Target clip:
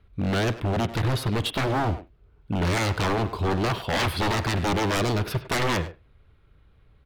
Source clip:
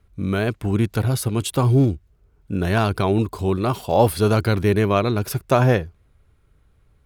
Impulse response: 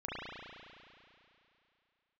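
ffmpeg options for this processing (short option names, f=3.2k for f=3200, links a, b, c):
-filter_complex "[0:a]highshelf=f=5.1k:t=q:w=1.5:g=-10.5,aeval=exprs='0.106*(abs(mod(val(0)/0.106+3,4)-2)-1)':c=same,asplit=2[a][b];[b]adelay=100,highpass=300,lowpass=3.4k,asoftclip=type=hard:threshold=-28dB,volume=-10dB[c];[a][c]amix=inputs=2:normalize=0,asplit=2[d][e];[1:a]atrim=start_sample=2205,atrim=end_sample=3969[f];[e][f]afir=irnorm=-1:irlink=0,volume=-15dB[g];[d][g]amix=inputs=2:normalize=0"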